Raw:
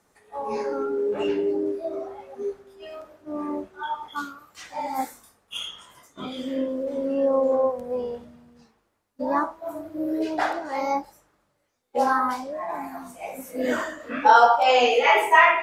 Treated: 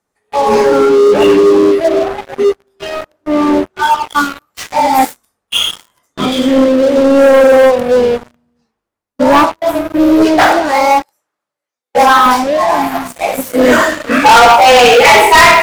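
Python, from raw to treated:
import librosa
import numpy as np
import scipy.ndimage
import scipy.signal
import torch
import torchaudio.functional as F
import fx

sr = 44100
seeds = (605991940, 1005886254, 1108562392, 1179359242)

y = fx.highpass(x, sr, hz=620.0, slope=6, at=(10.71, 12.26))
y = fx.leveller(y, sr, passes=5)
y = y * librosa.db_to_amplitude(2.0)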